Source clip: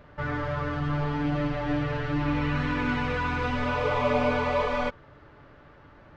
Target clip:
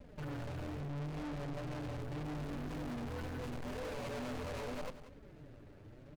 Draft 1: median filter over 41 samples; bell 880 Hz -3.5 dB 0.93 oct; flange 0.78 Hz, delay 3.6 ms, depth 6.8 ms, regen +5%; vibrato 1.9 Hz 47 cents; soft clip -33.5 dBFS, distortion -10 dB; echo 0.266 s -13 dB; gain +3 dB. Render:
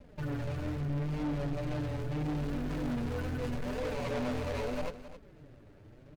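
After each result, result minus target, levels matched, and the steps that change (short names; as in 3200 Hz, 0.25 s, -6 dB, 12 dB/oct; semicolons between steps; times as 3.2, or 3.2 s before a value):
echo 79 ms late; soft clip: distortion -5 dB
change: echo 0.187 s -13 dB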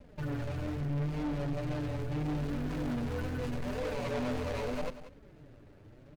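soft clip: distortion -5 dB
change: soft clip -43 dBFS, distortion -5 dB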